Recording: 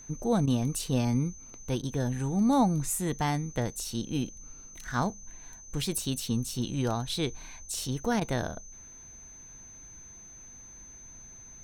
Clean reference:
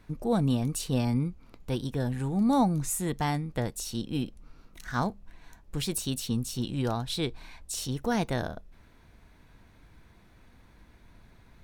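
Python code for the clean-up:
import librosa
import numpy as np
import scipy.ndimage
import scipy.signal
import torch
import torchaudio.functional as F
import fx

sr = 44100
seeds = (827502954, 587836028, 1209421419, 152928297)

y = fx.notch(x, sr, hz=6200.0, q=30.0)
y = fx.fix_interpolate(y, sr, at_s=(0.46, 1.82, 8.2), length_ms=12.0)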